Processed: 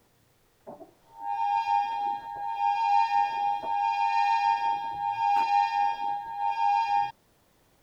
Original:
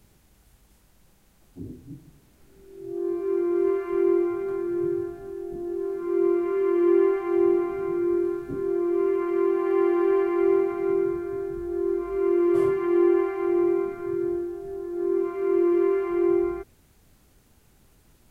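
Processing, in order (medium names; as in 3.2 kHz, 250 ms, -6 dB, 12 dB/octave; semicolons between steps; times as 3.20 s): bass shelf 130 Hz -8 dB; speed mistake 33 rpm record played at 78 rpm; trim -2 dB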